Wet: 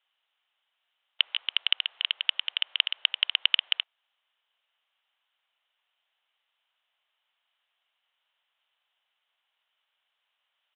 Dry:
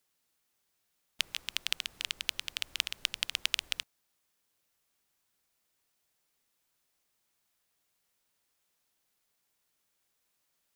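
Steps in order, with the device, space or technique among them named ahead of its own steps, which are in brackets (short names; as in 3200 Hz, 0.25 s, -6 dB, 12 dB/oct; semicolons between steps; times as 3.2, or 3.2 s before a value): musical greeting card (downsampling 8000 Hz; HPF 670 Hz 24 dB/oct; bell 3000 Hz +9 dB 0.24 oct); gain +4 dB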